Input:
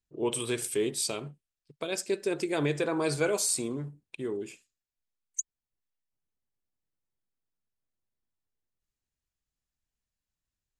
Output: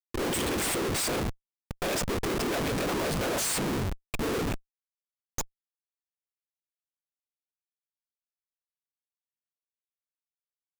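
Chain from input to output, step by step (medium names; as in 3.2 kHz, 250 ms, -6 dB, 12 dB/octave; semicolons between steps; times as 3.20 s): whisper effect; in parallel at -8 dB: sample-rate reducer 6.1 kHz, jitter 0%; on the sum: Schmitt trigger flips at -40 dBFS; trim +4 dB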